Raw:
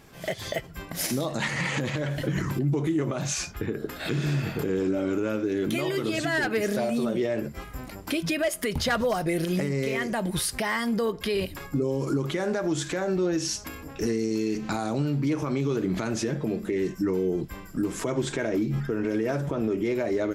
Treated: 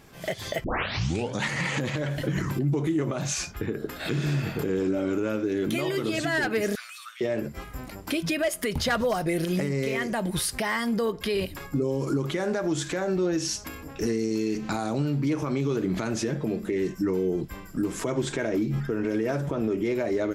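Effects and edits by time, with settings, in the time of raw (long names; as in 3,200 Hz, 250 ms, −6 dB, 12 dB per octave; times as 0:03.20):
0:00.64: tape start 0.80 s
0:06.75–0:07.21: Chebyshev high-pass filter 1,200 Hz, order 5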